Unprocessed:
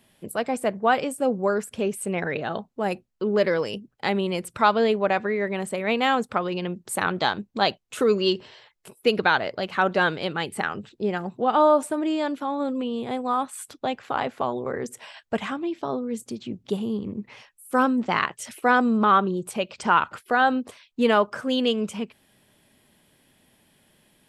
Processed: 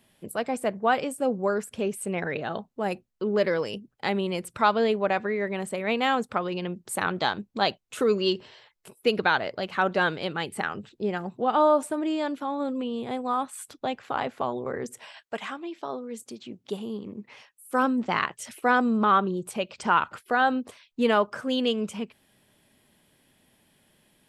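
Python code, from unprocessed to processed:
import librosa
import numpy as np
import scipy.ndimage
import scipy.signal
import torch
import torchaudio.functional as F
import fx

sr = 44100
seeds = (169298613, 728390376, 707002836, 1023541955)

y = fx.highpass(x, sr, hz=fx.line((15.22, 670.0), (17.82, 200.0)), slope=6, at=(15.22, 17.82), fade=0.02)
y = F.gain(torch.from_numpy(y), -2.5).numpy()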